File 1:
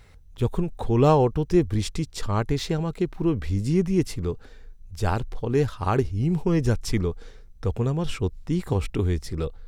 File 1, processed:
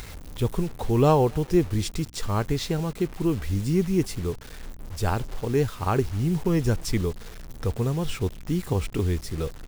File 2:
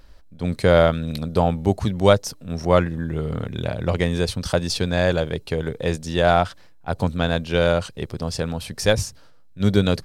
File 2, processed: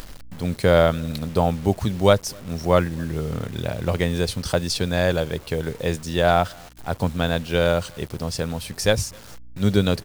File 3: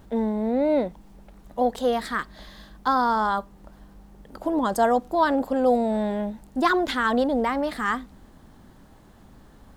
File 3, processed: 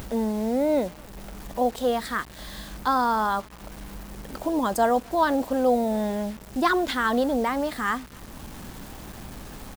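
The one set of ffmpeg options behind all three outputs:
-filter_complex "[0:a]highshelf=f=7.9k:g=4.5,acompressor=mode=upward:threshold=-28dB:ratio=2.5,asplit=2[a][b];[b]adelay=256.6,volume=-29dB,highshelf=f=4k:g=-5.77[c];[a][c]amix=inputs=2:normalize=0,acrusher=bits=6:mix=0:aa=0.000001,aeval=exprs='val(0)+0.00355*(sin(2*PI*60*n/s)+sin(2*PI*2*60*n/s)/2+sin(2*PI*3*60*n/s)/3+sin(2*PI*4*60*n/s)/4+sin(2*PI*5*60*n/s)/5)':c=same,volume=-1dB"

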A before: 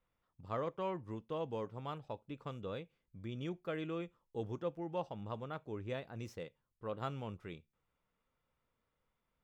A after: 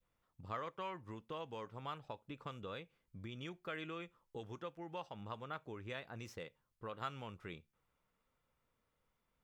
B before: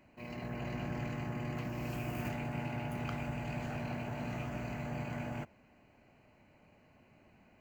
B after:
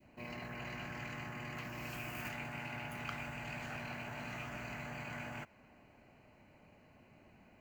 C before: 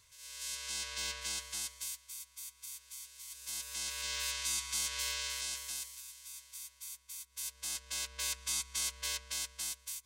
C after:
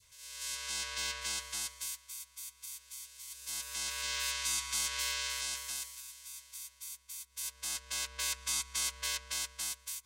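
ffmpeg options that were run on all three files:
-filter_complex "[0:a]adynamicequalizer=threshold=0.002:dfrequency=1200:dqfactor=0.79:tfrequency=1200:tqfactor=0.79:attack=5:release=100:ratio=0.375:range=2:mode=boostabove:tftype=bell,acrossover=split=1300[a][b];[a]acompressor=threshold=-46dB:ratio=6[c];[c][b]amix=inputs=2:normalize=0,volume=1dB"

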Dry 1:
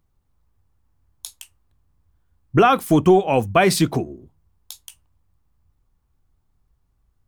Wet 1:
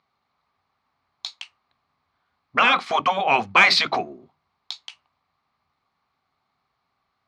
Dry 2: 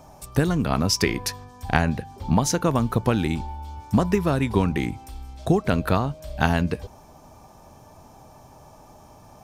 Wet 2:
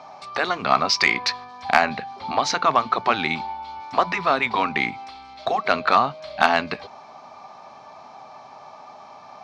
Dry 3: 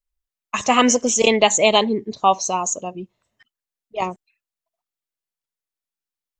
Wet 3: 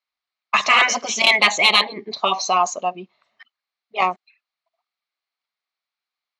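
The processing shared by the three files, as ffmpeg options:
-af "afftfilt=real='re*lt(hypot(re,im),0.631)':imag='im*lt(hypot(re,im),0.631)':win_size=1024:overlap=0.75,highpass=320,equalizer=f=320:t=q:w=4:g=-9,equalizer=f=480:t=q:w=4:g=-6,equalizer=f=740:t=q:w=4:g=5,equalizer=f=1.2k:t=q:w=4:g=8,equalizer=f=2.2k:t=q:w=4:g=8,equalizer=f=4.2k:t=q:w=4:g=8,lowpass=f=4.9k:w=0.5412,lowpass=f=4.9k:w=1.3066,acontrast=46,volume=-1dB"

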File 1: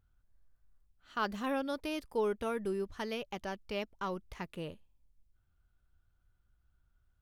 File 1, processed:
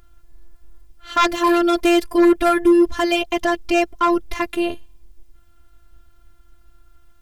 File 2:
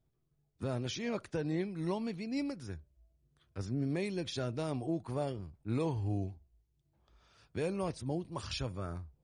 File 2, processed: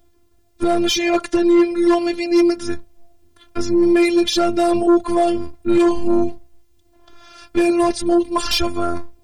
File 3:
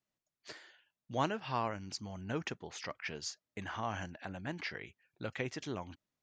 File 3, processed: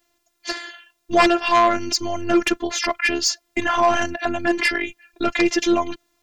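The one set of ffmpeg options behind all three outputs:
-af "afftfilt=real='hypot(re,im)*cos(PI*b)':imag='0':win_size=512:overlap=0.75,acontrast=78,aeval=exprs='0.2*sin(PI/2*2.82*val(0)/0.2)':c=same,volume=6dB"

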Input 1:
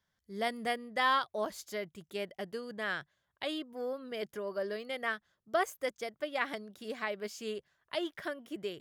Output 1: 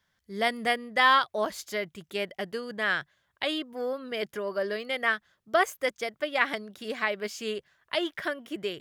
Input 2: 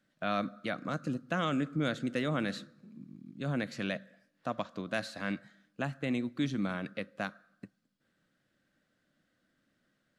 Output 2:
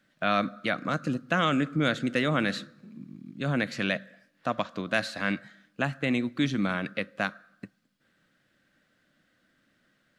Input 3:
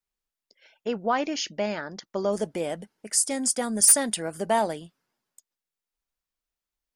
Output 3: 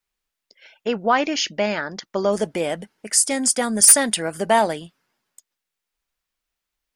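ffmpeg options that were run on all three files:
-af "equalizer=f=2.2k:w=0.66:g=4.5,volume=5dB"

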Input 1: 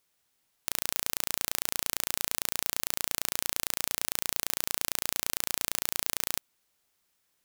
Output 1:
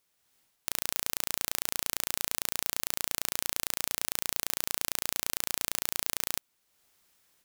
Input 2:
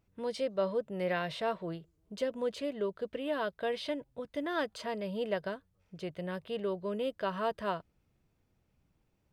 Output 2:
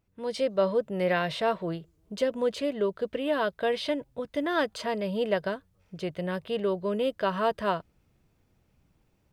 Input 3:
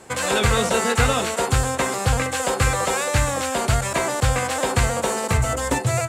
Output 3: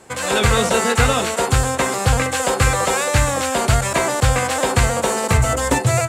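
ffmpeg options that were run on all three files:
-af "dynaudnorm=f=190:g=3:m=7.5dB,volume=-1dB"

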